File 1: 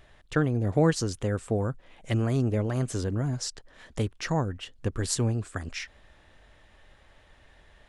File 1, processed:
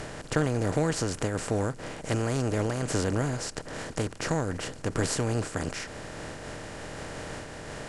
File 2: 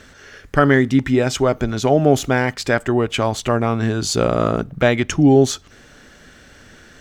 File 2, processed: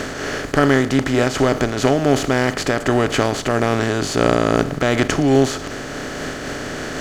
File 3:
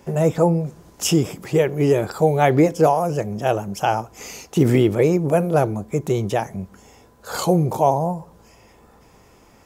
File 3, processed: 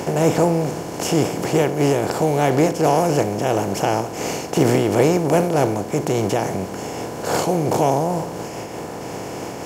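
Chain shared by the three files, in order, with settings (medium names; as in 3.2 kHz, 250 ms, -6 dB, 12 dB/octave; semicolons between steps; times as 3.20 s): spectral levelling over time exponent 0.4; random flutter of the level, depth 50%; trim -3.5 dB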